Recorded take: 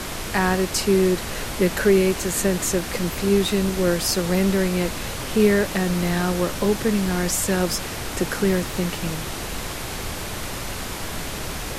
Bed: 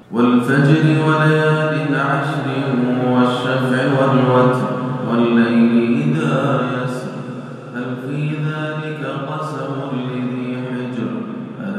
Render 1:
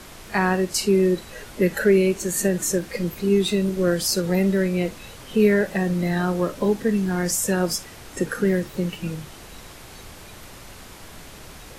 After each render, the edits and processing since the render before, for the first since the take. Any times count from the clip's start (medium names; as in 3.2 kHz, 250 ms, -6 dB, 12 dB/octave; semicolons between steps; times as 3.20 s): noise print and reduce 12 dB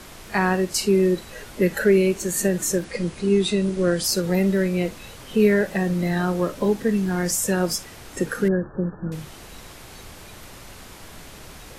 2.84–4.04 s: brick-wall FIR low-pass 11 kHz; 8.48–9.12 s: brick-wall FIR low-pass 1.8 kHz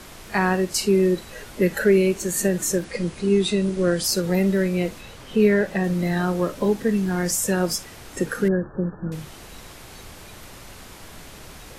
5.01–5.84 s: treble shelf 7.8 kHz -8 dB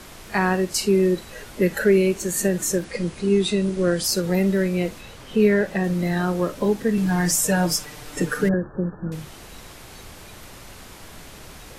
6.97–8.54 s: comb 6.7 ms, depth 96%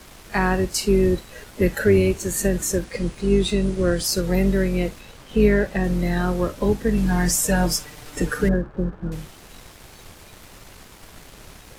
octave divider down 2 oct, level -3 dB; crossover distortion -48.5 dBFS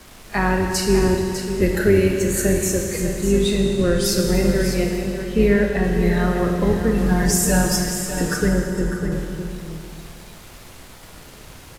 on a send: delay 600 ms -9 dB; on the sum: Schroeder reverb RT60 2.4 s, combs from 25 ms, DRR 2.5 dB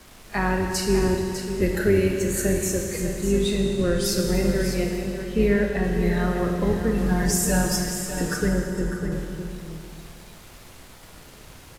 trim -4 dB